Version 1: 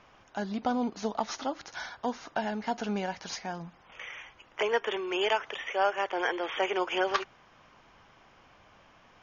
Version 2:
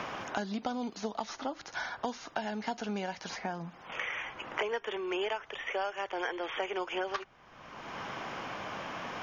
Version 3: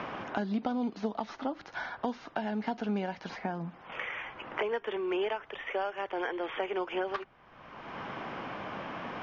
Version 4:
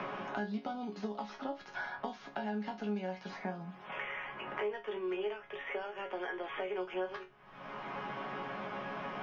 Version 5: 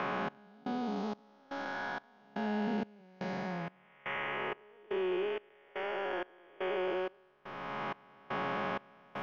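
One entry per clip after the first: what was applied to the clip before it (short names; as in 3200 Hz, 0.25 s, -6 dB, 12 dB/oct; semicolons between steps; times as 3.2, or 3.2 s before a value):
three-band squash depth 100%; gain -5 dB
dynamic EQ 240 Hz, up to +5 dB, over -48 dBFS, Q 0.78; Gaussian blur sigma 2 samples
resonator bank C#3 sus4, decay 0.22 s; three-band squash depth 70%; gain +7 dB
time blur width 0.446 s; step gate "xxx....xx" 159 bpm -24 dB; gain +7.5 dB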